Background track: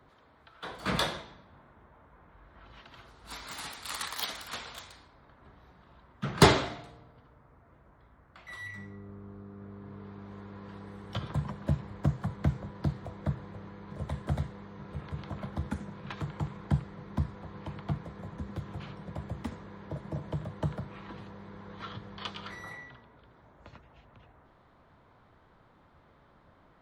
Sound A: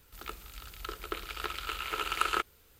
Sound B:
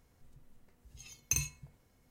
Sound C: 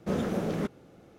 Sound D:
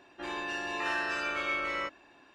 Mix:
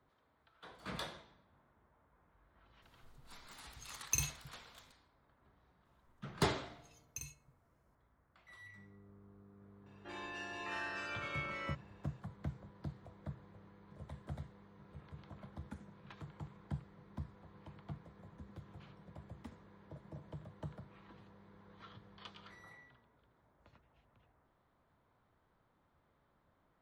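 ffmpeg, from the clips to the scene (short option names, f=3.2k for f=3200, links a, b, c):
-filter_complex "[2:a]asplit=2[a][b];[0:a]volume=-14dB[c];[a]atrim=end=2.1,asetpts=PTS-STARTPTS,volume=-2.5dB,afade=t=in:d=0.004:c=hsin,afade=t=out:st=2.096:d=0.004:c=hsin,adelay=2820[d];[b]atrim=end=2.1,asetpts=PTS-STARTPTS,volume=-15dB,afade=t=in:d=0.004:c=hsin,afade=t=out:st=2.096:d=0.004:c=hsin,adelay=257985S[e];[4:a]atrim=end=2.34,asetpts=PTS-STARTPTS,volume=-10dB,afade=t=in:d=0.004:c=hsin,afade=t=out:st=2.336:d=0.004:c=hsin,adelay=434826S[f];[c][d][e][f]amix=inputs=4:normalize=0"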